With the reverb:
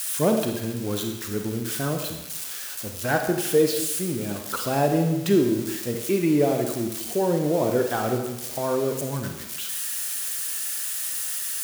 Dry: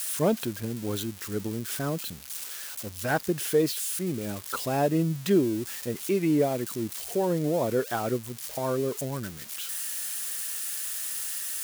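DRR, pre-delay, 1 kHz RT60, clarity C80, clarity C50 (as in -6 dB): 4.0 dB, 31 ms, 0.95 s, 7.5 dB, 5.5 dB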